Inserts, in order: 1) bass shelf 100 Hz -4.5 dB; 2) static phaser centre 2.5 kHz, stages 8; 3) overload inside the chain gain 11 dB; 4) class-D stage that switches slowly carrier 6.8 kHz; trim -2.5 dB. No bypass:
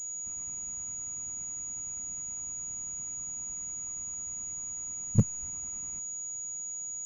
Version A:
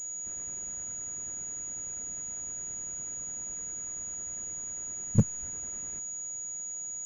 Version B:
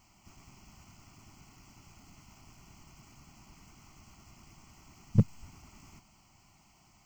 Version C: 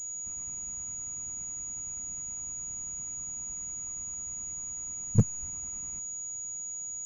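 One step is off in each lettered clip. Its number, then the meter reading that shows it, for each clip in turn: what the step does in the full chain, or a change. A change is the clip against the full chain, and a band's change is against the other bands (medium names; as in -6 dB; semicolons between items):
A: 2, 125 Hz band -1.5 dB; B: 4, crest factor change +3.5 dB; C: 1, 500 Hz band +2.0 dB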